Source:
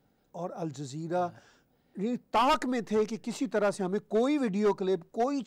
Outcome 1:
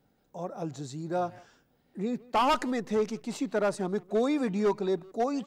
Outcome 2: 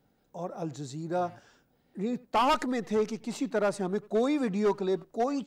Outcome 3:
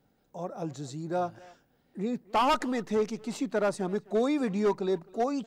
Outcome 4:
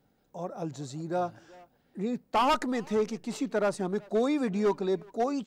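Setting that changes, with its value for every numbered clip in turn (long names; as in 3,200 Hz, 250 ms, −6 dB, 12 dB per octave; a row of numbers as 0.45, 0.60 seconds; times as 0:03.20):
far-end echo of a speakerphone, delay time: 160, 90, 260, 380 milliseconds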